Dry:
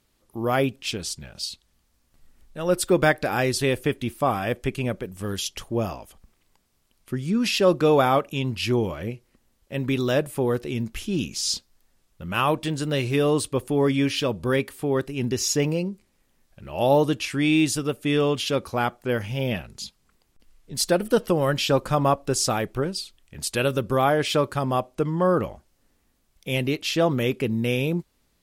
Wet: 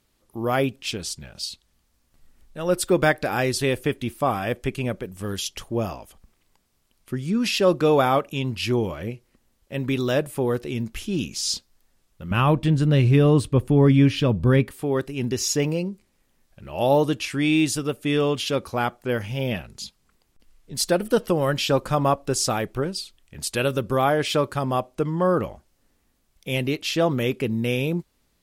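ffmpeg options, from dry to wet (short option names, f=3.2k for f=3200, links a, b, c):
-filter_complex "[0:a]asettb=1/sr,asplit=3[a][b][c];[a]atrim=end=12.314[d];[b]atrim=start=12.31:end=14.71,asetpts=PTS-STARTPTS,afade=t=in:d=0.004:c=qsin,afade=t=out:st=2.396:d=0.004:c=qsin,bass=f=250:g=12,treble=f=4k:g=-7[e];[c]atrim=start=14.706[f];[d][e]acrossfade=d=0.004:c1=hsin:c2=qsin[g];[g][f]acrossfade=d=0.004:c1=qsin:c2=hsin"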